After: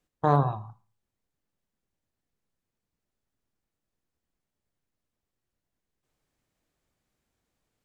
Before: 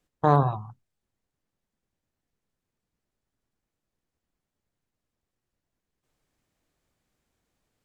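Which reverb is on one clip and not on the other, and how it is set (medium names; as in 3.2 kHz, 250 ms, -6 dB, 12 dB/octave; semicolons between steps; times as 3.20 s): Schroeder reverb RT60 0.37 s, combs from 28 ms, DRR 14 dB; trim -2.5 dB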